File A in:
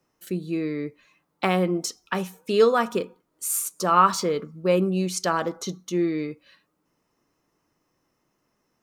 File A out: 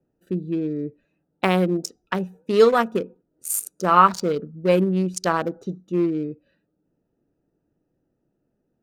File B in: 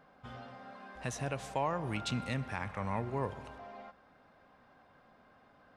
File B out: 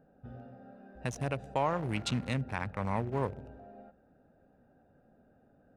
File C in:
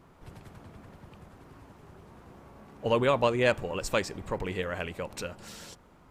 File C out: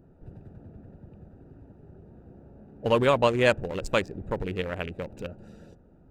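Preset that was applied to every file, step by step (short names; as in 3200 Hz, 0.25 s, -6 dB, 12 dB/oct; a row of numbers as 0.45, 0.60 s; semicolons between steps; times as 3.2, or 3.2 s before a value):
Wiener smoothing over 41 samples; high shelf 9500 Hz +4.5 dB; gain +3.5 dB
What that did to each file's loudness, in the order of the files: +2.5, +3.5, +3.0 LU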